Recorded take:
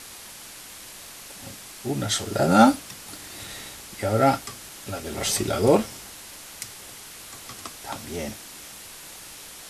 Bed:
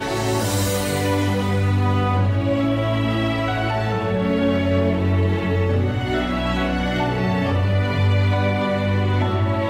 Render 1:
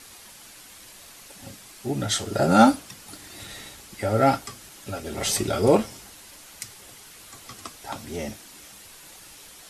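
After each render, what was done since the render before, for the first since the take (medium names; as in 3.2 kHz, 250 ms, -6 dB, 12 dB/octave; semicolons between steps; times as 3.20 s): noise reduction 6 dB, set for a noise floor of -43 dBFS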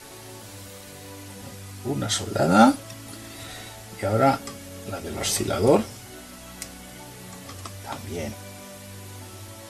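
add bed -22.5 dB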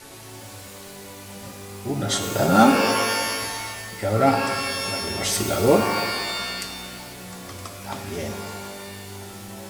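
pitch-shifted reverb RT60 1.7 s, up +12 st, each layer -2 dB, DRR 5.5 dB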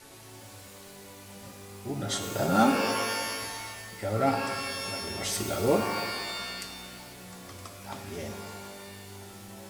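trim -7.5 dB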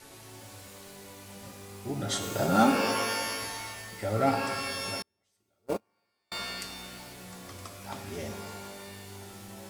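5.02–6.32 s: gate -21 dBFS, range -45 dB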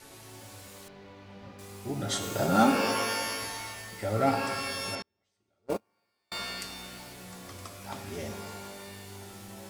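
0.88–1.59 s: distance through air 250 m; 4.95–5.70 s: distance through air 76 m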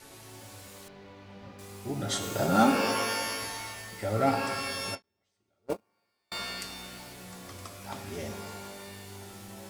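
endings held to a fixed fall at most 500 dB/s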